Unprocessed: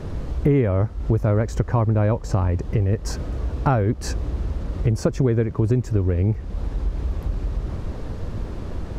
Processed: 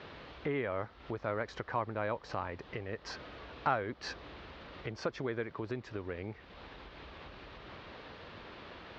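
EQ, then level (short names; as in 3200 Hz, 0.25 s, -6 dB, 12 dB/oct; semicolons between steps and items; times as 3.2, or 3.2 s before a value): LPF 4100 Hz 24 dB/oct; dynamic EQ 2600 Hz, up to -5 dB, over -50 dBFS, Q 2.3; band-pass 3200 Hz, Q 0.74; +1.0 dB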